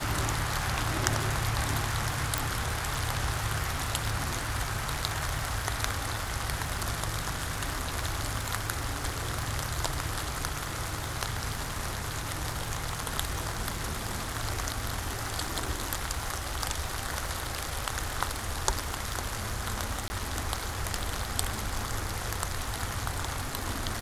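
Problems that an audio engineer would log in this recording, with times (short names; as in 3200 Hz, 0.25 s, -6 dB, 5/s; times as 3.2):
crackle 160/s -37 dBFS
2.38 pop
20.08–20.1 gap 20 ms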